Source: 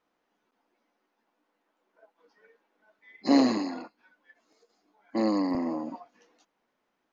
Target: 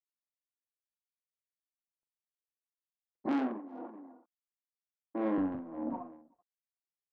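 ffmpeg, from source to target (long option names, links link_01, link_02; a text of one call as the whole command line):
ffmpeg -i in.wav -filter_complex "[0:a]aeval=exprs='val(0)*gte(abs(val(0)),0.00447)':channel_layout=same,lowpass=frequency=1100:width=0.5412,lowpass=frequency=1100:width=1.3066,asoftclip=type=tanh:threshold=-26dB,acompressor=threshold=-32dB:ratio=6,asettb=1/sr,asplit=3[link_01][link_02][link_03];[link_01]atrim=end=3.264[link_04];[link_02]atrim=start=3.26:end=5.38,asetpts=PTS-STARTPTS,afade=type=in:duration=0.004:curve=qsin,afade=type=out:start_time=2.116:duration=0.004:curve=qsin,highpass=frequency=220:width=0.5412,highpass=frequency=220:width=1.3066[link_05];[link_03]atrim=start=5.376[link_06];[link_04][link_05]acrossfade=duration=0.004:curve1=hsin:curve2=qsin[link_07];[link_07][link_06]acrossfade=duration=0.004:curve1=qsin:curve2=hsin,agate=range=-33dB:threshold=-50dB:ratio=3:detection=peak,aecho=1:1:42|382:0.355|0.141,tremolo=f=1.5:d=0.83,volume=3.5dB" out.wav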